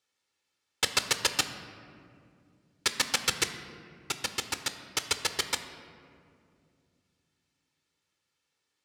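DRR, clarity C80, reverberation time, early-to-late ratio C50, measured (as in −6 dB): 8.0 dB, 11.0 dB, 2.4 s, 10.0 dB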